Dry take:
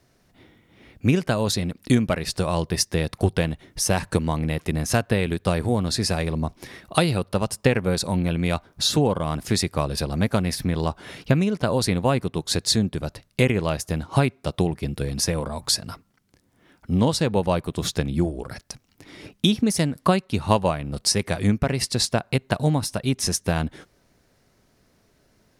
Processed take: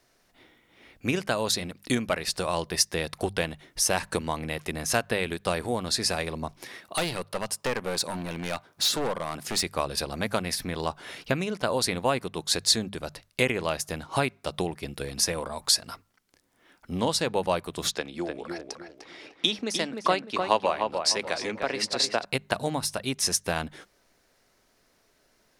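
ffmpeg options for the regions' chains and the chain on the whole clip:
-filter_complex "[0:a]asettb=1/sr,asplit=3[a][b][c];[a]atrim=end=6.624[d];[b]atrim=start=6.62:end=9.63,asetpts=PTS-STARTPTS,afade=t=in:d=0.004:c=qsin,afade=t=out:st=3.006:d=0.004:c=qsin,highpass=94,asoftclip=type=hard:threshold=-19.5dB[e];[c]atrim=start=9.626[f];[d][e]acrossfade=d=0.004:c1=hsin:c2=qsin[g];[g][f]acrossfade=d=0.004:c1=qsin:c2=hsin,asettb=1/sr,asplit=3[h][i][j];[h]atrim=end=17.914[k];[i]atrim=start=17.91:end=22.25,asetpts=PTS-STARTPTS,afade=t=in:d=0.004:c=qsin,afade=t=out:st=4.336:d=0.004:c=qsin,acrossover=split=240 7100:gain=0.2 1 0.158[l][m][n];[l][m][n]amix=inputs=3:normalize=0,asplit=2[o][p];[p]adelay=302,lowpass=f=2k:p=1,volume=-4.5dB,asplit=2[q][r];[r]adelay=302,lowpass=f=2k:p=1,volume=0.35,asplit=2[s][t];[t]adelay=302,lowpass=f=2k:p=1,volume=0.35,asplit=2[u][v];[v]adelay=302,lowpass=f=2k:p=1,volume=0.35[w];[o][q][s][u][w]amix=inputs=5:normalize=0,atrim=end_sample=191394[x];[j]atrim=start=22.246[y];[k][x]acrossfade=d=0.004:c1=hsin:c2=qsin[z];[z][y]acrossfade=d=0.004:c1=qsin:c2=hsin,equalizer=f=100:w=0.34:g=-12.5,bandreject=f=50:t=h:w=6,bandreject=f=100:t=h:w=6,bandreject=f=150:t=h:w=6,bandreject=f=200:t=h:w=6"

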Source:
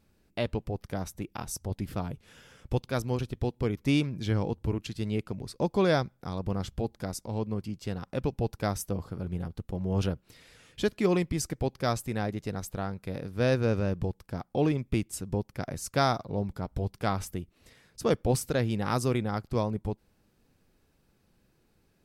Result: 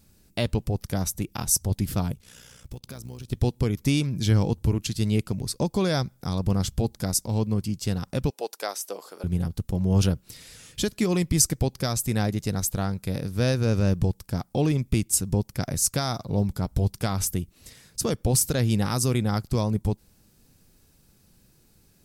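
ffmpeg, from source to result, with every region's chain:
-filter_complex "[0:a]asettb=1/sr,asplit=3[a][b][c];[a]atrim=end=2.124[d];[b]atrim=start=2.12:end=3.32,asetpts=PTS-STARTPTS,afade=t=in:d=0.004:c=qsin,afade=t=out:st=1.196:d=0.004:c=qsin,tremolo=f=61:d=0.71,acompressor=threshold=-42dB:ratio=6:attack=3.2:release=140:knee=1:detection=peak,acrusher=bits=9:mode=log:mix=0:aa=0.000001[e];[c]atrim=start=3.316[f];[d][e]acrossfade=d=0.004:c1=hsin:c2=qsin[g];[g][f]acrossfade=d=0.004:c1=qsin:c2=hsin,asettb=1/sr,asplit=3[h][i][j];[h]atrim=end=8.304[k];[i]atrim=start=8.3:end=9.24,asetpts=PTS-STARTPTS,afade=t=in:d=0.004:c=qsin,afade=t=out:st=0.936:d=0.004:c=qsin,highpass=f=420:w=0.5412,highpass=f=420:w=1.3066,acrossover=split=4400[l][m];[m]acompressor=threshold=-47dB:ratio=4:attack=1:release=60[n];[l][n]amix=inputs=2:normalize=0[o];[j]atrim=start=9.236[p];[k][o]acrossfade=d=0.004:c1=hsin:c2=qsin[q];[q][p]acrossfade=d=0.004:c1=qsin:c2=hsin,lowshelf=f=230:g=-7.5,alimiter=limit=-21.5dB:level=0:latency=1:release=176,bass=f=250:g=12,treble=f=4k:g=13,volume=3.5dB"

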